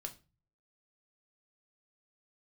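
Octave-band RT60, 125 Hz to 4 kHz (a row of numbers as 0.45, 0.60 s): 0.75, 0.50, 0.35, 0.30, 0.30, 0.25 s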